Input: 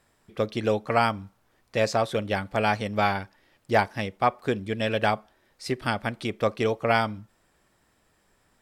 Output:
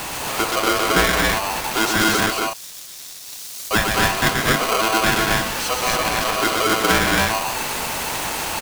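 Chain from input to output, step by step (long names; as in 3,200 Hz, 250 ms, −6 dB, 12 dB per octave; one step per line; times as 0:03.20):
converter with a step at zero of −23 dBFS
0:02.26–0:03.71: inverse Chebyshev high-pass filter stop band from 2,400 Hz, stop band 40 dB
on a send: loudspeakers that aren't time-aligned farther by 43 metres −4 dB, 80 metres −3 dB, 93 metres −3 dB
on the sum: ring modulator with a square carrier 880 Hz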